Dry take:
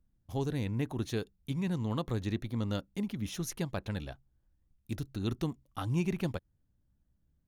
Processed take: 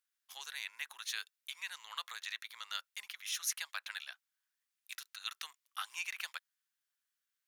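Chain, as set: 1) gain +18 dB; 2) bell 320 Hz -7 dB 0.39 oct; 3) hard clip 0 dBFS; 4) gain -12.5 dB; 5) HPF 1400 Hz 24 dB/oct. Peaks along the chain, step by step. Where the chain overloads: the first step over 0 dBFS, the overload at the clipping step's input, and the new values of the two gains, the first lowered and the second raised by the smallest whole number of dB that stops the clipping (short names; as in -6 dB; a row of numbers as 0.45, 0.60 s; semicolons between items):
-0.5, -2.0, -2.0, -14.5, -20.5 dBFS; no overload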